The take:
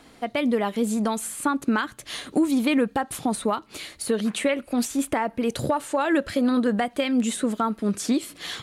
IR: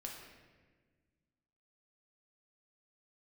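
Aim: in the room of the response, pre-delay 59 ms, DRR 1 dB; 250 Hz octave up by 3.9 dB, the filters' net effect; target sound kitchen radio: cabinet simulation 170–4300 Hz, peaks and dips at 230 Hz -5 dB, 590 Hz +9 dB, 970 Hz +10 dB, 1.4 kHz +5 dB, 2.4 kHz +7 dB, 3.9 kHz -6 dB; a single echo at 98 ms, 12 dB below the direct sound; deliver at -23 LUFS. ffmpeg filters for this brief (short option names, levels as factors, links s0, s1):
-filter_complex "[0:a]equalizer=f=250:t=o:g=8,aecho=1:1:98:0.251,asplit=2[s0][s1];[1:a]atrim=start_sample=2205,adelay=59[s2];[s1][s2]afir=irnorm=-1:irlink=0,volume=1.19[s3];[s0][s3]amix=inputs=2:normalize=0,highpass=170,equalizer=f=230:t=q:w=4:g=-5,equalizer=f=590:t=q:w=4:g=9,equalizer=f=970:t=q:w=4:g=10,equalizer=f=1400:t=q:w=4:g=5,equalizer=f=2400:t=q:w=4:g=7,equalizer=f=3900:t=q:w=4:g=-6,lowpass=f=4300:w=0.5412,lowpass=f=4300:w=1.3066,volume=0.501"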